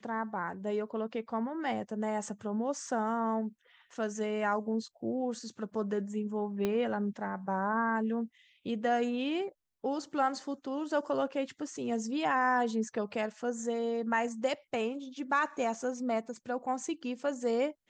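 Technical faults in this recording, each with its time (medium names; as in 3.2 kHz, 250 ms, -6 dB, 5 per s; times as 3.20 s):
2.87 s: dropout 2.3 ms
6.65 s: pop -18 dBFS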